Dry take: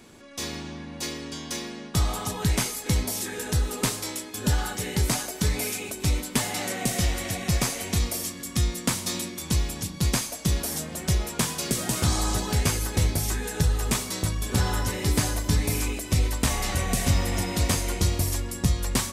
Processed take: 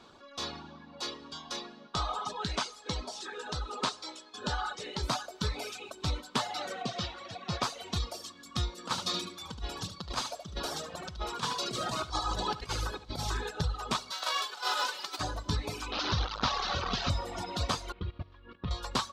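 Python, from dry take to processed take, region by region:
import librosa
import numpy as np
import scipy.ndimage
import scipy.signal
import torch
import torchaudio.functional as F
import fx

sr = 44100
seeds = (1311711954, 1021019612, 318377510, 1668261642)

y = fx.chain(x, sr, fx.lowpass(hz=9200.0, slope=24),
    fx.peak_eq(hz=100.0, db=-9.0, octaves=1.4), at=(1.87, 5.03))
y = fx.chain(y, sr, fx.bandpass_edges(low_hz=110.0, high_hz=5600.0),
    fx.band_widen(depth_pct=40), at=(6.82, 7.63))
y = fx.chain(y, sr, fx.over_compress(threshold_db=-26.0, ratio=-0.5),
    fx.echo_single(ms=74, db=-5.5), at=(8.78, 13.51))
y = fx.envelope_flatten(y, sr, power=0.3, at=(14.11, 15.19), fade=0.02)
y = fx.highpass(y, sr, hz=390.0, slope=12, at=(14.11, 15.19), fade=0.02)
y = fx.over_compress(y, sr, threshold_db=-26.0, ratio=-0.5, at=(14.11, 15.19), fade=0.02)
y = fx.chain(y, sr, fx.delta_mod(bps=32000, step_db=-19.5),
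    fx.peak_eq(hz=660.0, db=-4.5, octaves=0.2), at=(15.92, 17.1))
y = fx.chain(y, sr, fx.lowpass(hz=3100.0, slope=24),
    fx.peak_eq(hz=760.0, db=-8.5, octaves=0.58),
    fx.level_steps(step_db=12), at=(17.92, 18.71))
y = fx.dereverb_blind(y, sr, rt60_s=1.9)
y = fx.curve_eq(y, sr, hz=(270.0, 1300.0, 2000.0, 3900.0, 11000.0), db=(0, 13, -2, 10, -15))
y = y * librosa.db_to_amplitude(-8.5)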